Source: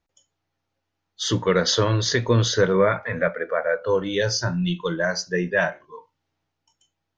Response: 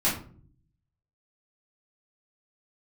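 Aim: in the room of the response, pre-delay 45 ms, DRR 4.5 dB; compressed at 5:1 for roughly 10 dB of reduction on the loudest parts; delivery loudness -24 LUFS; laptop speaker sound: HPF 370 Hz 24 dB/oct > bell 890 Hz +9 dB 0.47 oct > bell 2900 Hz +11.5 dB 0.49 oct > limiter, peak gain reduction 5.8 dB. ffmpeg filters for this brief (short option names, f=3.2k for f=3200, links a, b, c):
-filter_complex "[0:a]acompressor=threshold=-25dB:ratio=5,asplit=2[a][b];[1:a]atrim=start_sample=2205,adelay=45[c];[b][c]afir=irnorm=-1:irlink=0,volume=-16dB[d];[a][d]amix=inputs=2:normalize=0,highpass=f=370:w=0.5412,highpass=f=370:w=1.3066,equalizer=f=890:t=o:w=0.47:g=9,equalizer=f=2.9k:t=o:w=0.49:g=11.5,volume=4.5dB,alimiter=limit=-13.5dB:level=0:latency=1"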